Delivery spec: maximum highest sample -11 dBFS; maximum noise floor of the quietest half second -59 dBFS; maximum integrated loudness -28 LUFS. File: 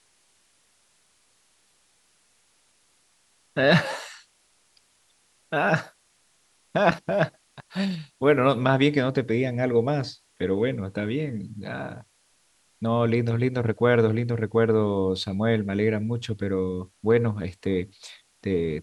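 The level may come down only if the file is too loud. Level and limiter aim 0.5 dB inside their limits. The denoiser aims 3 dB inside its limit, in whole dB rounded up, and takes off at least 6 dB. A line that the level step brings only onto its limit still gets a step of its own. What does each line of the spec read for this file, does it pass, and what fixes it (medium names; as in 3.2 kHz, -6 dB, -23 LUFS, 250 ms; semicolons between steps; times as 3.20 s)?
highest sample -5.5 dBFS: fail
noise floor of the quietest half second -65 dBFS: pass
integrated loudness -25.0 LUFS: fail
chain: trim -3.5 dB; peak limiter -11.5 dBFS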